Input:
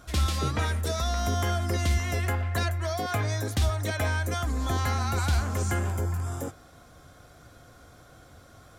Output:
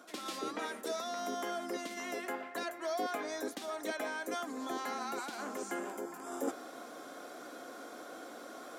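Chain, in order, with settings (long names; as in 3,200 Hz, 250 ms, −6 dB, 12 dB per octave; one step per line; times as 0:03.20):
reversed playback
downward compressor 6 to 1, threshold −39 dBFS, peak gain reduction 16.5 dB
reversed playback
Butterworth high-pass 250 Hz 36 dB per octave
tilt shelving filter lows +3 dB, about 1,100 Hz
level +6.5 dB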